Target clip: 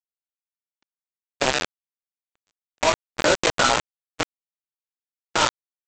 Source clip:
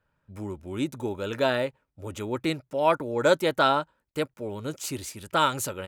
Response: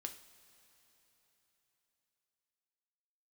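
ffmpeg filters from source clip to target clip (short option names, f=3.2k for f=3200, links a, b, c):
-af "afftfilt=real='re':imag='-im':win_size=2048:overlap=0.75,highpass=220,lowpass=4.8k,bandreject=f=3.7k:w=28,adynamicequalizer=threshold=0.00251:dfrequency=2500:dqfactor=4.5:tfrequency=2500:tqfactor=4.5:attack=5:release=100:ratio=0.375:range=2.5:mode=boostabove:tftype=bell,aecho=1:1:584|1168|1752:0.266|0.0639|0.0153,aresample=16000,acrusher=bits=3:mix=0:aa=0.000001,aresample=44100,agate=range=-55dB:threshold=-32dB:ratio=16:detection=peak,acompressor=threshold=-35dB:ratio=12,alimiter=level_in=27.5dB:limit=-1dB:release=50:level=0:latency=1,volume=-6dB"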